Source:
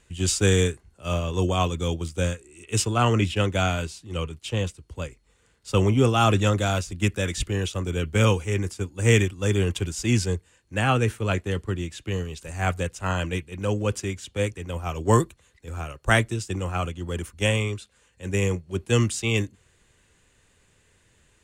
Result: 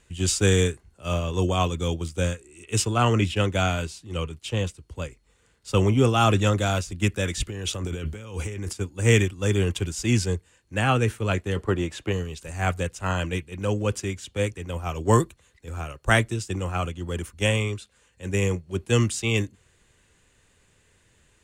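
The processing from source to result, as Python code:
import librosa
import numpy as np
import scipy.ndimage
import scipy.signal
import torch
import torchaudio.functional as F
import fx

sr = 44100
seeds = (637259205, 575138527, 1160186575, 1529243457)

y = fx.over_compress(x, sr, threshold_db=-32.0, ratio=-1.0, at=(7.48, 8.73))
y = fx.peak_eq(y, sr, hz=740.0, db=11.0, octaves=2.5, at=(11.56, 12.11), fade=0.02)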